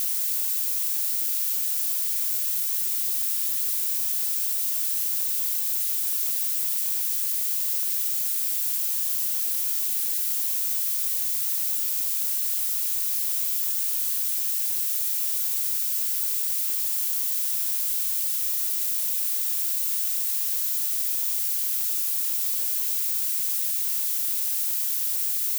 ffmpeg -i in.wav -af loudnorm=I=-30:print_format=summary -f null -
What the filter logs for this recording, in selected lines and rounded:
Input Integrated:    -22.8 LUFS
Input True Peak:     -11.3 dBTP
Input LRA:             0.1 LU
Input Threshold:     -32.8 LUFS